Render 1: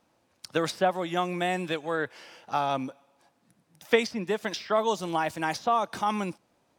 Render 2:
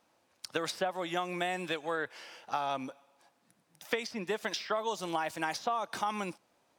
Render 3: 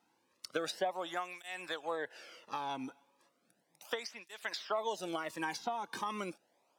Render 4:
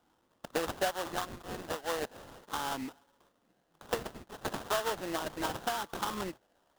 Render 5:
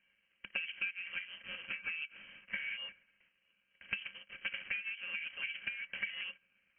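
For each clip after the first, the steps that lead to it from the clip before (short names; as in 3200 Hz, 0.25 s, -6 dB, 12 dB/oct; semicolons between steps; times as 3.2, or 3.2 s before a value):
low shelf 310 Hz -9.5 dB; compressor 12:1, threshold -28 dBFS, peak gain reduction 11.5 dB
tape flanging out of phase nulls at 0.35 Hz, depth 1.8 ms; gain -1 dB
sample-rate reducer 2300 Hz, jitter 20%; gain +3 dB
treble ducked by the level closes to 690 Hz, closed at -30 dBFS; inverted band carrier 3100 Hz; small resonant body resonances 200/540/1600/2300 Hz, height 13 dB, ringing for 95 ms; gain -5.5 dB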